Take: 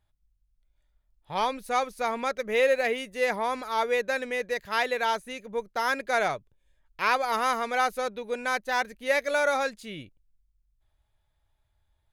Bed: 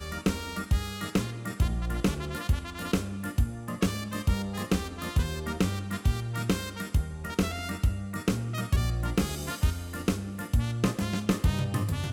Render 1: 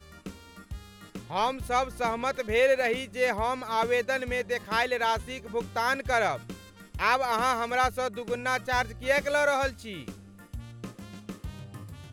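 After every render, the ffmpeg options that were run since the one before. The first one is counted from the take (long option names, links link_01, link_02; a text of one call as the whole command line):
ffmpeg -i in.wav -i bed.wav -filter_complex "[1:a]volume=-14dB[link_01];[0:a][link_01]amix=inputs=2:normalize=0" out.wav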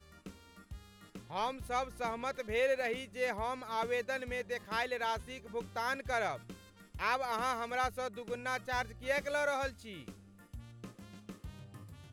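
ffmpeg -i in.wav -af "volume=-8.5dB" out.wav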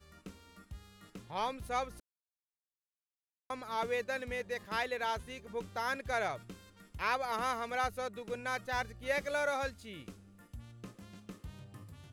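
ffmpeg -i in.wav -filter_complex "[0:a]asplit=3[link_01][link_02][link_03];[link_01]atrim=end=2,asetpts=PTS-STARTPTS,afade=type=out:start_time=1.996:duration=0.004:curve=hsin[link_04];[link_02]atrim=start=2:end=3.5,asetpts=PTS-STARTPTS,volume=0[link_05];[link_03]atrim=start=3.5,asetpts=PTS-STARTPTS,afade=type=in:duration=0.004:curve=hsin[link_06];[link_04][link_05][link_06]concat=n=3:v=0:a=1" out.wav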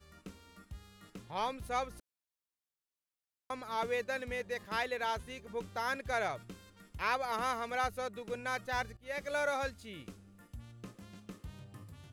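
ffmpeg -i in.wav -filter_complex "[0:a]asplit=2[link_01][link_02];[link_01]atrim=end=8.97,asetpts=PTS-STARTPTS,afade=type=out:start_time=8.966:duration=0.004:curve=hsin:silence=0.125893[link_03];[link_02]atrim=start=8.97,asetpts=PTS-STARTPTS,afade=type=in:duration=0.41:silence=0.125893[link_04];[link_03][link_04]concat=n=2:v=0:a=1" out.wav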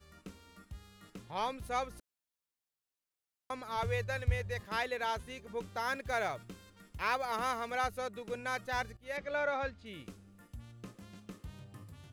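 ffmpeg -i in.wav -filter_complex "[0:a]asettb=1/sr,asplit=3[link_01][link_02][link_03];[link_01]atrim=end=3.764[link_04];[link_02]atrim=start=3.76:end=4.6,asetpts=PTS-STARTPTS,afade=type=in:duration=0.004:curve=qsin,afade=type=out:start_time=0.836:duration=0.004:curve=qsin,lowshelf=frequency=160:width_type=q:width=3:gain=13.5[link_05];[link_03]atrim=start=4.596[link_06];[link_04][link_05]acrossfade=duration=0.004:curve1=hsin:curve2=qsin[link_07];[link_07][link_06]acrossfade=duration=0.004:curve1=qsin:curve2=hsin,asettb=1/sr,asplit=3[link_08][link_09][link_10];[link_08]atrim=end=5.824[link_11];[link_09]atrim=start=5.82:end=7.72,asetpts=PTS-STARTPTS,afade=type=in:duration=0.004:curve=qsin,afade=type=out:start_time=1.896:duration=0.004:curve=qsin,acrusher=bits=8:mode=log:mix=0:aa=0.000001[link_12];[link_10]atrim=start=7.716[link_13];[link_11][link_12]acrossfade=duration=0.004:curve1=hsin:curve2=qsin[link_14];[link_14][link_13]acrossfade=duration=0.004:curve1=qsin:curve2=hsin,asettb=1/sr,asplit=3[link_15][link_16][link_17];[link_15]atrim=end=9.174[link_18];[link_16]atrim=start=9.17:end=9.86,asetpts=PTS-STARTPTS,afade=type=in:duration=0.004:curve=qsin,afade=type=out:start_time=0.686:duration=0.004:curve=qsin,lowpass=3200[link_19];[link_17]atrim=start=9.856[link_20];[link_18][link_19]acrossfade=duration=0.004:curve1=hsin:curve2=qsin[link_21];[link_21][link_20]acrossfade=duration=0.004:curve1=qsin:curve2=hsin" out.wav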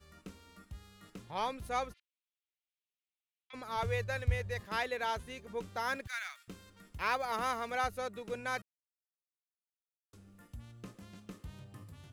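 ffmpeg -i in.wav -filter_complex "[0:a]asplit=3[link_01][link_02][link_03];[link_01]afade=type=out:start_time=1.92:duration=0.02[link_04];[link_02]asuperpass=centerf=2800:order=4:qfactor=1.7,afade=type=in:start_time=1.92:duration=0.02,afade=type=out:start_time=3.53:duration=0.02[link_05];[link_03]afade=type=in:start_time=3.53:duration=0.02[link_06];[link_04][link_05][link_06]amix=inputs=3:normalize=0,asettb=1/sr,asplit=3[link_07][link_08][link_09];[link_07]atrim=end=6.074[link_10];[link_08]atrim=start=6.07:end=6.48,asetpts=PTS-STARTPTS,afade=type=in:duration=0.004:curve=qsin,afade=type=out:start_time=0.406:duration=0.004:curve=qsin,highpass=frequency=1500:width=0.5412,highpass=frequency=1500:width=1.3066[link_11];[link_09]atrim=start=6.476[link_12];[link_10][link_11]acrossfade=duration=0.004:curve1=hsin:curve2=qsin[link_13];[link_13][link_12]acrossfade=duration=0.004:curve1=qsin:curve2=hsin,asplit=3[link_14][link_15][link_16];[link_14]atrim=end=8.62,asetpts=PTS-STARTPTS,afade=type=out:start_time=8.616:duration=0.004:curve=hsin[link_17];[link_15]atrim=start=8.62:end=10.13,asetpts=PTS-STARTPTS,volume=0[link_18];[link_16]atrim=start=10.13,asetpts=PTS-STARTPTS,afade=type=in:duration=0.004:curve=hsin[link_19];[link_17][link_18][link_19]concat=n=3:v=0:a=1" out.wav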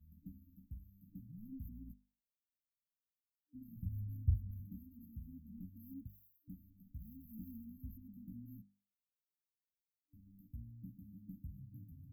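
ffmpeg -i in.wav -af "afftfilt=real='re*(1-between(b*sr/4096,300,12000))':imag='im*(1-between(b*sr/4096,300,12000))':win_size=4096:overlap=0.75,bandreject=frequency=50:width_type=h:width=6,bandreject=frequency=100:width_type=h:width=6,bandreject=frequency=150:width_type=h:width=6,bandreject=frequency=200:width_type=h:width=6,bandreject=frequency=250:width_type=h:width=6" out.wav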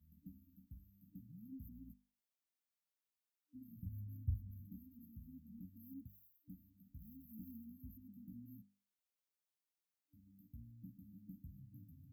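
ffmpeg -i in.wav -af "highpass=40,lowshelf=frequency=160:gain=-7.5" out.wav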